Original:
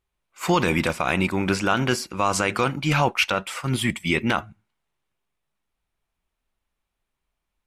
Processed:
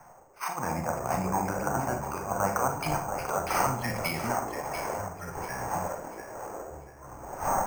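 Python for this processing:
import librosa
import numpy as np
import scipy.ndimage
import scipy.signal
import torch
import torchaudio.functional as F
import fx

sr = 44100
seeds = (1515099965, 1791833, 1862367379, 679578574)

y = fx.dmg_wind(x, sr, seeds[0], corner_hz=520.0, level_db=-37.0)
y = scipy.signal.sosfilt(scipy.signal.butter(4, 2500.0, 'lowpass', fs=sr, output='sos'), y)
y = fx.env_lowpass_down(y, sr, base_hz=630.0, full_db=-19.0)
y = fx.low_shelf_res(y, sr, hz=570.0, db=-11.5, q=3.0)
y = fx.over_compress(y, sr, threshold_db=-29.0, ratio=-0.5)
y = fx.rev_schroeder(y, sr, rt60_s=0.43, comb_ms=33, drr_db=4.5)
y = fx.echo_pitch(y, sr, ms=88, semitones=-5, count=3, db_per_echo=-6.0)
y = fx.echo_thinned(y, sr, ms=691, feedback_pct=40, hz=630.0, wet_db=-6.5)
y = np.repeat(y[::6], 6)[:len(y)]
y = fx.band_widen(y, sr, depth_pct=40)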